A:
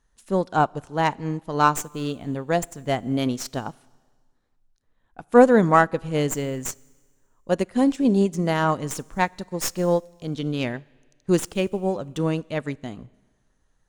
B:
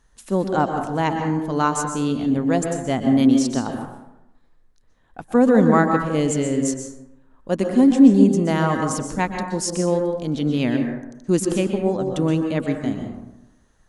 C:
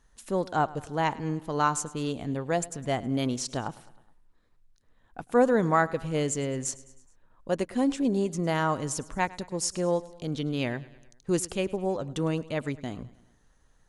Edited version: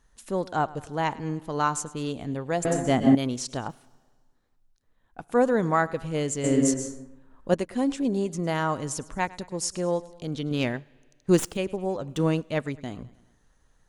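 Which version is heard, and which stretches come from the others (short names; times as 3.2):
C
2.65–3.15 from B
3.7–5.28 from A
6.44–7.54 from B
10.51–11.57 from A
12.09–12.66 from A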